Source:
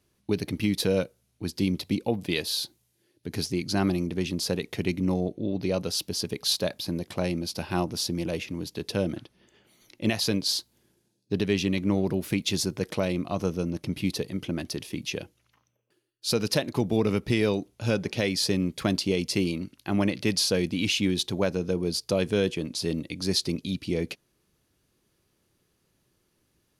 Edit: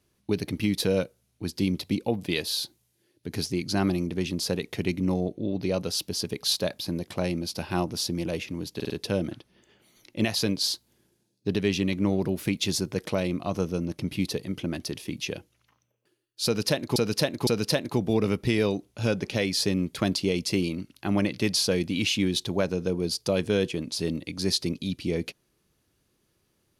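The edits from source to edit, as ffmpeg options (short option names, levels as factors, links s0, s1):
-filter_complex "[0:a]asplit=6[s0][s1][s2][s3][s4][s5];[s0]atrim=end=8.802[s6];[s1]atrim=start=8.748:end=8.802[s7];[s2]atrim=start=8.748:end=8.802[s8];[s3]atrim=start=8.748:end=16.812[s9];[s4]atrim=start=16.298:end=16.812[s10];[s5]atrim=start=16.298[s11];[s6][s7]acrossfade=d=0.004:c1=hsin:c2=hsin[s12];[s12][s8]acrossfade=d=0.004:c1=hsin:c2=hsin[s13];[s13][s9]acrossfade=d=0.004:c1=hsin:c2=hsin[s14];[s14][s10]acrossfade=d=0.004:c1=hsin:c2=hsin[s15];[s15][s11]acrossfade=d=0.004:c1=hsin:c2=hsin"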